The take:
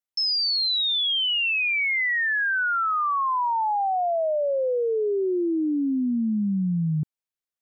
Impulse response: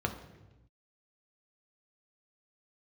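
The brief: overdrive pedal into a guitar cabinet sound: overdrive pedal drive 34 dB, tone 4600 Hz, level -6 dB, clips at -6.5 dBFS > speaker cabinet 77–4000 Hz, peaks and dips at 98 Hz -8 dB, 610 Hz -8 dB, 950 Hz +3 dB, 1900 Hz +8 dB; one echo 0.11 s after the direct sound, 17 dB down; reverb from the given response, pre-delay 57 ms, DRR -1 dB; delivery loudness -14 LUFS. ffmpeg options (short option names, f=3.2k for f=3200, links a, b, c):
-filter_complex "[0:a]aecho=1:1:110:0.141,asplit=2[a][b];[1:a]atrim=start_sample=2205,adelay=57[c];[b][c]afir=irnorm=-1:irlink=0,volume=-5dB[d];[a][d]amix=inputs=2:normalize=0,asplit=2[e][f];[f]highpass=f=720:p=1,volume=34dB,asoftclip=type=tanh:threshold=-6.5dB[g];[e][g]amix=inputs=2:normalize=0,lowpass=f=4.6k:p=1,volume=-6dB,highpass=77,equalizer=f=98:t=q:w=4:g=-8,equalizer=f=610:t=q:w=4:g=-8,equalizer=f=950:t=q:w=4:g=3,equalizer=f=1.9k:t=q:w=4:g=8,lowpass=f=4k:w=0.5412,lowpass=f=4k:w=1.3066,volume=-3.5dB"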